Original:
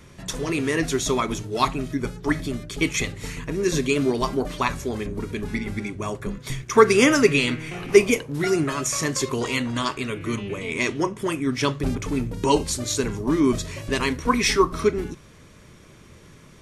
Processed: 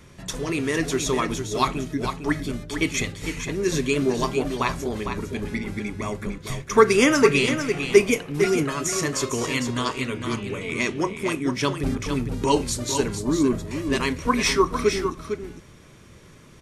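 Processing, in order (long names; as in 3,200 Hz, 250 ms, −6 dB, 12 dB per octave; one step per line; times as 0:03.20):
0:13.19–0:13.71: parametric band 5,000 Hz −12.5 dB 2.6 octaves
single-tap delay 454 ms −7.5 dB
level −1 dB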